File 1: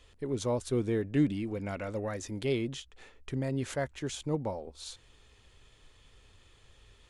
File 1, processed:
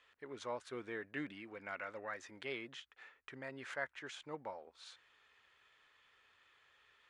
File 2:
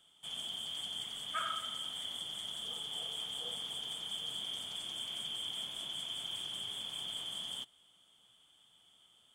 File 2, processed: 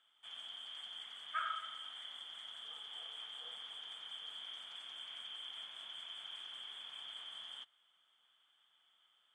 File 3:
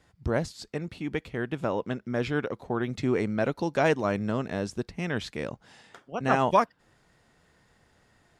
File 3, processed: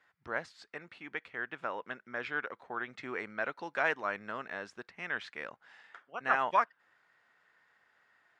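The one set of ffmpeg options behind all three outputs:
-af "bandpass=f=1.6k:t=q:w=1.6:csg=0,volume=1dB"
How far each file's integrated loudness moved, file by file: -12.5, -7.0, -7.0 LU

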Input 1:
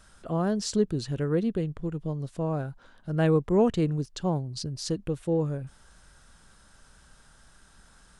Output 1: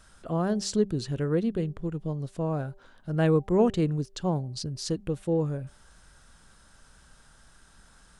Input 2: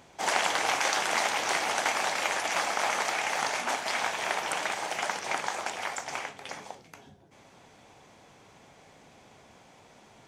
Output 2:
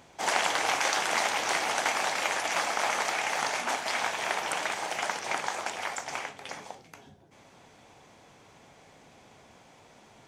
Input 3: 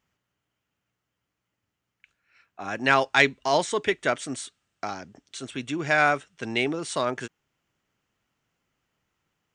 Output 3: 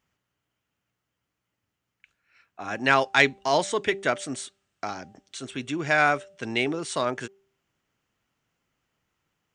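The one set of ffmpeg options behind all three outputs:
-af "bandreject=f=196:t=h:w=4,bandreject=f=392:t=h:w=4,bandreject=f=588:t=h:w=4,bandreject=f=784:t=h:w=4"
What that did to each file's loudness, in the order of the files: 0.0, 0.0, 0.0 LU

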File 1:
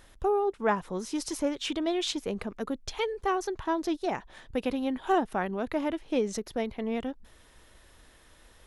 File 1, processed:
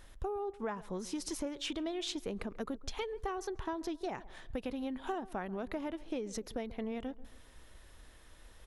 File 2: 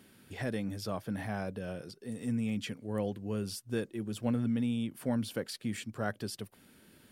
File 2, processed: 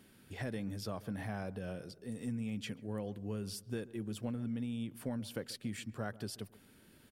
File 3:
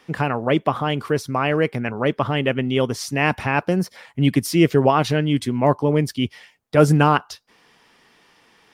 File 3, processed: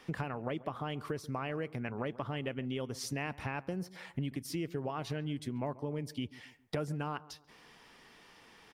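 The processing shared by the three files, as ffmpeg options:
-filter_complex "[0:a]lowshelf=f=71:g=7,acompressor=threshold=-31dB:ratio=10,asplit=2[a][b];[b]adelay=137,lowpass=f=1.2k:p=1,volume=-18dB,asplit=2[c][d];[d]adelay=137,lowpass=f=1.2k:p=1,volume=0.43,asplit=2[e][f];[f]adelay=137,lowpass=f=1.2k:p=1,volume=0.43,asplit=2[g][h];[h]adelay=137,lowpass=f=1.2k:p=1,volume=0.43[i];[c][e][g][i]amix=inputs=4:normalize=0[j];[a][j]amix=inputs=2:normalize=0,volume=-3dB"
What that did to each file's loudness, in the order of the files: -9.0, -5.5, -18.5 LU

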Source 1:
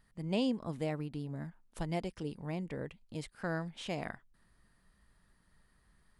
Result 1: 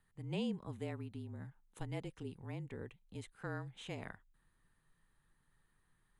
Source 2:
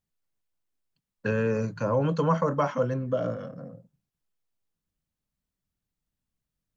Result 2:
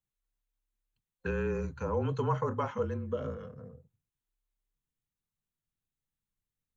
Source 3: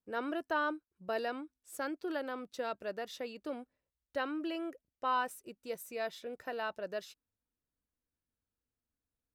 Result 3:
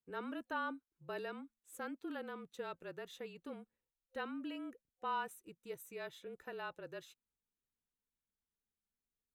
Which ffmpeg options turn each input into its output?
-af "afreqshift=-34,superequalizer=8b=0.562:14b=0.398,volume=-6dB"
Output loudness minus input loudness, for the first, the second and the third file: -6.5, -6.5, -7.0 LU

